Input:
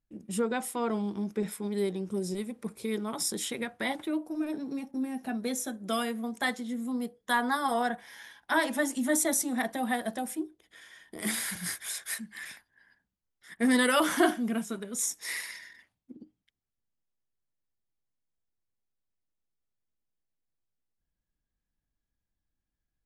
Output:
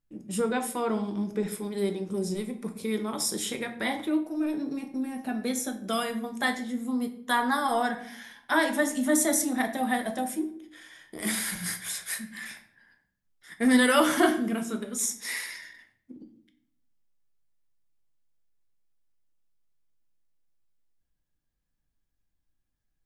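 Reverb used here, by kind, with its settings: simulated room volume 89 m³, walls mixed, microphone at 0.4 m; trim +1.5 dB

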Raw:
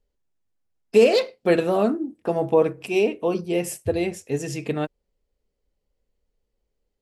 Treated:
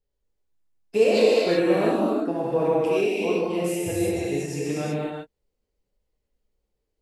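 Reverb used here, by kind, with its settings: gated-style reverb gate 410 ms flat, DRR -7 dB; trim -8 dB

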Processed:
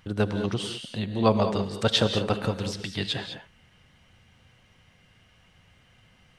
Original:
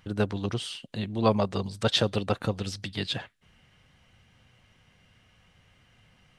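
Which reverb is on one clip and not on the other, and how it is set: gated-style reverb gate 230 ms rising, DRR 7.5 dB; trim +1.5 dB

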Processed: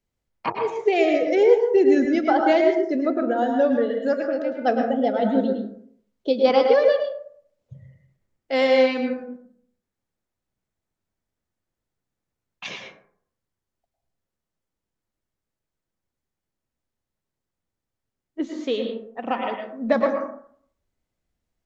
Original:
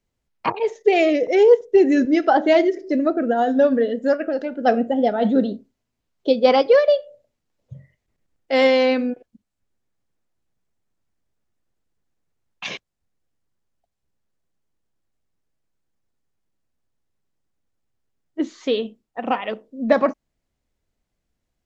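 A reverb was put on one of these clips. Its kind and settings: plate-style reverb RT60 0.59 s, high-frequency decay 0.4×, pre-delay 95 ms, DRR 3 dB; trim -4 dB

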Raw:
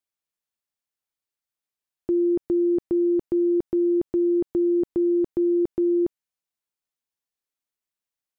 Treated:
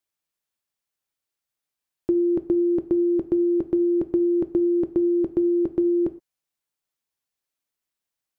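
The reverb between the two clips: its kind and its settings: gated-style reverb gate 140 ms falling, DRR 11 dB; trim +3 dB

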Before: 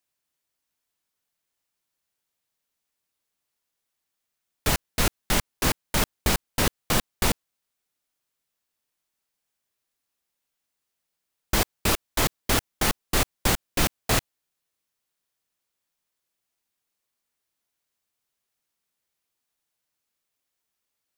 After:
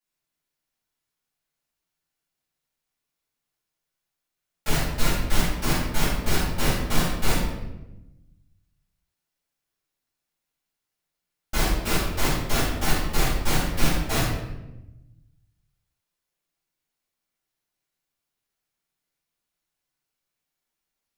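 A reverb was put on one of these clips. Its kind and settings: simulated room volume 390 m³, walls mixed, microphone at 7.2 m; trim -15.5 dB

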